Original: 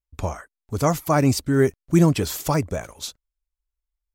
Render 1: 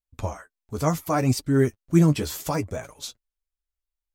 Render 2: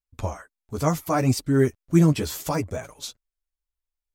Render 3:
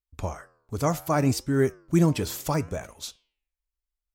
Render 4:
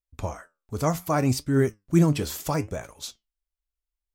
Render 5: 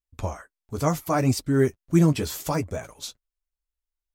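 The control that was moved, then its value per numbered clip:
flange, regen: +23%, -1%, -89%, +73%, -27%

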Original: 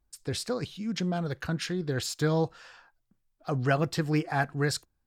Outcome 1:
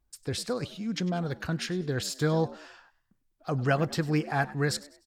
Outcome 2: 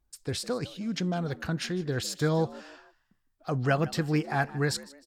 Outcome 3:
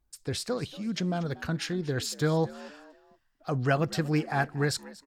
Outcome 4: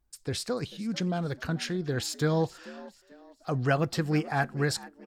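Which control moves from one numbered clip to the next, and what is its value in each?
frequency-shifting echo, time: 99 ms, 154 ms, 236 ms, 440 ms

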